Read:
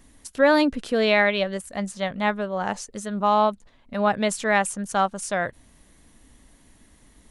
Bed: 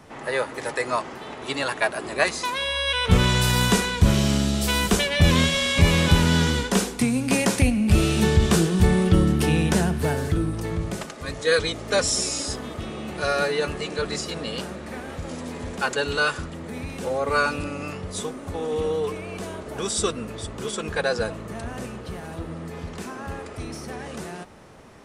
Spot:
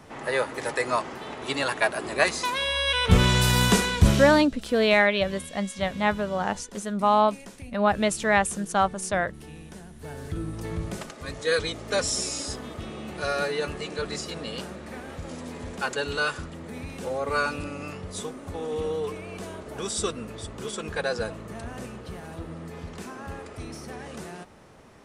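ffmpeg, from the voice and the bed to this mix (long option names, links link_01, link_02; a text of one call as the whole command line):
ffmpeg -i stem1.wav -i stem2.wav -filter_complex "[0:a]adelay=3800,volume=-0.5dB[link_01];[1:a]volume=18.5dB,afade=type=out:start_time=4.06:duration=0.42:silence=0.0749894,afade=type=in:start_time=9.94:duration=0.83:silence=0.112202[link_02];[link_01][link_02]amix=inputs=2:normalize=0" out.wav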